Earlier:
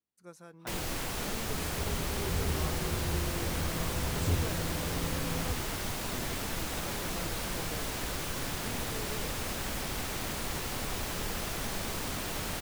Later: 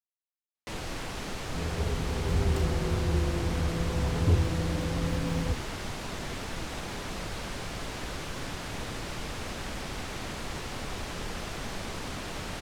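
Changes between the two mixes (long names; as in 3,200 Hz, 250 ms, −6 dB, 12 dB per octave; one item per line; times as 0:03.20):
speech: muted
first sound: add high-frequency loss of the air 56 metres
second sound +6.5 dB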